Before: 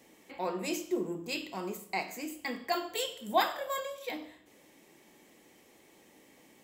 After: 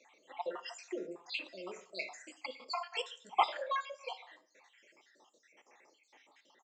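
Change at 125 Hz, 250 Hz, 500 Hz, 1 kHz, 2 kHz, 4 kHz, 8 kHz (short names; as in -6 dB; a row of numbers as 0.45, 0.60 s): under -15 dB, -13.5 dB, -7.0 dB, -2.0 dB, -4.0 dB, -4.0 dB, -11.5 dB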